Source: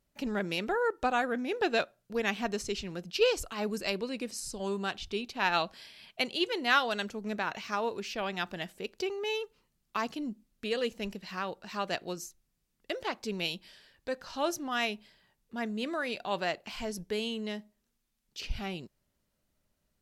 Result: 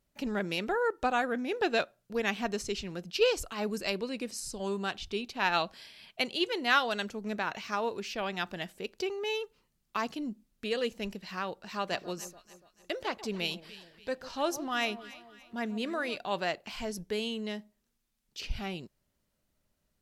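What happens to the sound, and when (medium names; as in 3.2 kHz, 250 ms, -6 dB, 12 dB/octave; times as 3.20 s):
11.53–16.18 s: echo whose repeats swap between lows and highs 144 ms, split 1.1 kHz, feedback 64%, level -13 dB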